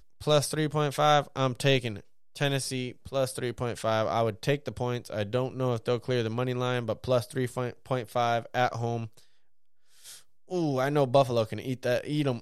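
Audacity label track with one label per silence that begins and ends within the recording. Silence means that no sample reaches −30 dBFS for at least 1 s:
9.040000	10.510000	silence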